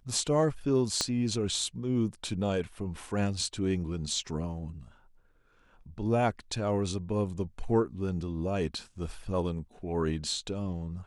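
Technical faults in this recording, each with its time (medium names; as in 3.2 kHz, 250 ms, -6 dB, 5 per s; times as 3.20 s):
1.01 s: pop -13 dBFS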